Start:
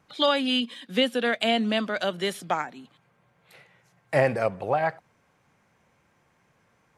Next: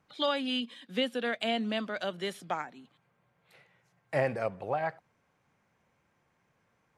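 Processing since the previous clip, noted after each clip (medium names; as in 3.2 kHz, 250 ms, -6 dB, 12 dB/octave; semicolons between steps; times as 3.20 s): treble shelf 7.4 kHz -4.5 dB; trim -7 dB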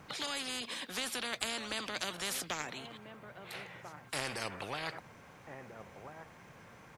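echo from a far wall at 230 m, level -29 dB; spectrum-flattening compressor 4:1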